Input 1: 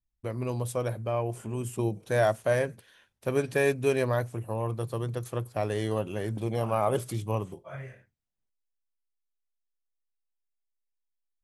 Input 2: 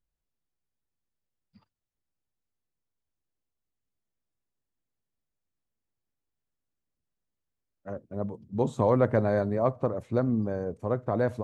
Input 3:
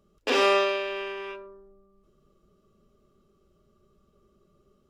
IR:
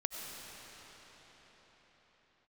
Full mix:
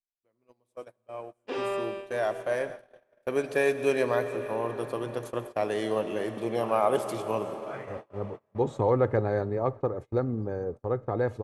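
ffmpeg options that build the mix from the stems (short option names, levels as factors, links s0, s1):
-filter_complex "[0:a]dynaudnorm=f=780:g=7:m=5.01,highpass=250,volume=0.237,asplit=2[s0][s1];[s1]volume=0.596[s2];[1:a]aecho=1:1:2.4:0.5,volume=0.794,asplit=2[s3][s4];[s4]volume=0.0708[s5];[2:a]tiltshelf=f=1400:g=5,adelay=1200,volume=0.251[s6];[3:a]atrim=start_sample=2205[s7];[s2][s5]amix=inputs=2:normalize=0[s8];[s8][s7]afir=irnorm=-1:irlink=0[s9];[s0][s3][s6][s9]amix=inputs=4:normalize=0,agate=range=0.0355:threshold=0.0141:ratio=16:detection=peak,highshelf=f=7300:g=-7.5"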